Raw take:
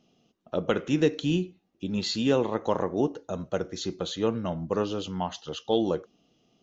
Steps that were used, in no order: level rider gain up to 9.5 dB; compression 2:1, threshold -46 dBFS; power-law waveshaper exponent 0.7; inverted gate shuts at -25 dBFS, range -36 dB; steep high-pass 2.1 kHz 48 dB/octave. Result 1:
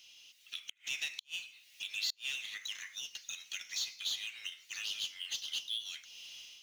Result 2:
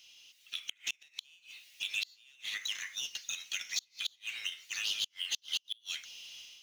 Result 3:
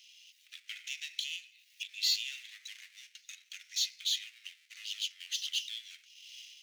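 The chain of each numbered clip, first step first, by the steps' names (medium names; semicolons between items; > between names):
steep high-pass > power-law waveshaper > level rider > compression > inverted gate; steep high-pass > power-law waveshaper > inverted gate > compression > level rider; power-law waveshaper > compression > steep high-pass > inverted gate > level rider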